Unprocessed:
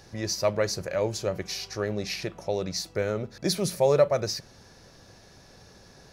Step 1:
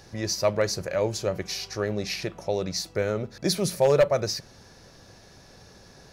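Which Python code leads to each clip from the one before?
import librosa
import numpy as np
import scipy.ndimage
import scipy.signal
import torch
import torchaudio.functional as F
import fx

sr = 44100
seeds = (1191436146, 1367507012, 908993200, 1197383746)

y = 10.0 ** (-13.0 / 20.0) * (np.abs((x / 10.0 ** (-13.0 / 20.0) + 3.0) % 4.0 - 2.0) - 1.0)
y = F.gain(torch.from_numpy(y), 1.5).numpy()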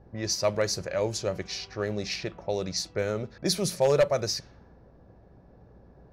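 y = fx.add_hum(x, sr, base_hz=60, snr_db=28)
y = fx.peak_eq(y, sr, hz=6100.0, db=3.0, octaves=1.6)
y = fx.env_lowpass(y, sr, base_hz=650.0, full_db=-22.5)
y = F.gain(torch.from_numpy(y), -2.5).numpy()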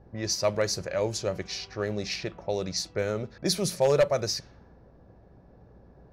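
y = x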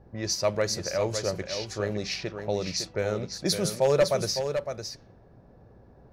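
y = x + 10.0 ** (-7.5 / 20.0) * np.pad(x, (int(558 * sr / 1000.0), 0))[:len(x)]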